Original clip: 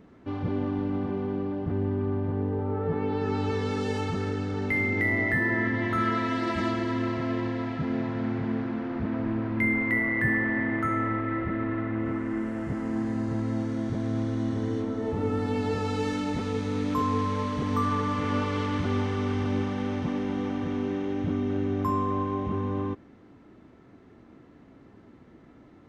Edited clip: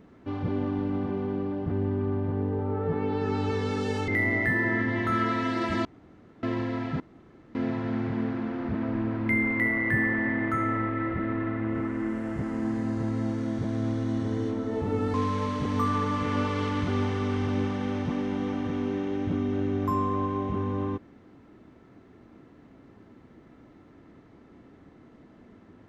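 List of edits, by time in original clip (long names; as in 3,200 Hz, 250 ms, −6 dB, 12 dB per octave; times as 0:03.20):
0:04.08–0:04.94: remove
0:06.71–0:07.29: fill with room tone
0:07.86: splice in room tone 0.55 s
0:15.45–0:17.11: remove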